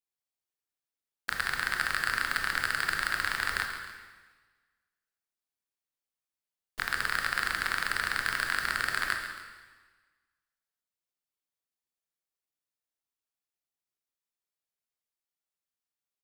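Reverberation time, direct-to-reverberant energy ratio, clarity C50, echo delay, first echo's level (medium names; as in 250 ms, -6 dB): 1.4 s, 2.5 dB, 4.5 dB, 136 ms, -11.5 dB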